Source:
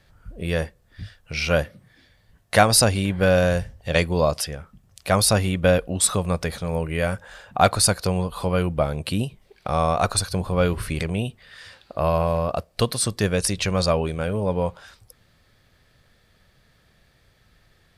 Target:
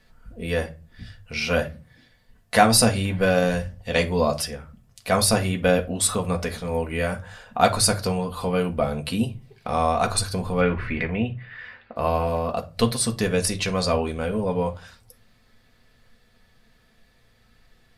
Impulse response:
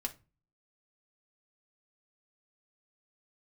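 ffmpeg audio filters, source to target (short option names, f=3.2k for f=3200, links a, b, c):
-filter_complex "[0:a]asettb=1/sr,asplit=3[a][b][c];[a]atrim=end=10.614[d];[b]atrim=start=10.61:end=11.96,asetpts=PTS-STARTPTS,afade=t=in:d=0.004:c=qsin,afade=t=out:st=1.346:d=0.004:c=qsin,lowpass=f=2k:t=q:w=2.3[e];[c]atrim=start=11.956[f];[d][e]acrossfade=d=0.004:c1=hsin:c2=qsin[g];[g][f]acrossfade=d=0.004:c1=qsin:c2=hsin[h];[1:a]atrim=start_sample=2205,asetrate=42777,aresample=44100[i];[h][i]afir=irnorm=-1:irlink=0,volume=-1dB"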